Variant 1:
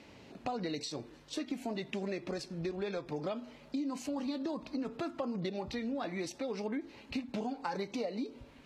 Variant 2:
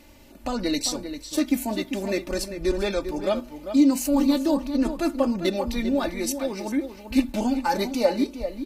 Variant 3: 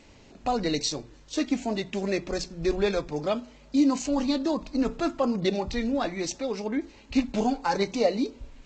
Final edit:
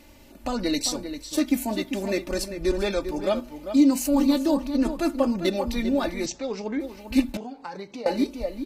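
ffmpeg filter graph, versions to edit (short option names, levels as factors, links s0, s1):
-filter_complex "[1:a]asplit=3[s0][s1][s2];[s0]atrim=end=6.262[s3];[2:a]atrim=start=6.258:end=6.802[s4];[s1]atrim=start=6.798:end=7.372[s5];[0:a]atrim=start=7.368:end=8.062[s6];[s2]atrim=start=8.058[s7];[s3][s4]acrossfade=d=0.004:c1=hsin:c2=hsin[s8];[s8][s5]acrossfade=d=0.004:c1=hsin:c2=hsin[s9];[s9][s6]acrossfade=d=0.004:c1=hsin:c2=hsin[s10];[s10][s7]acrossfade=d=0.004:c1=hsin:c2=hsin"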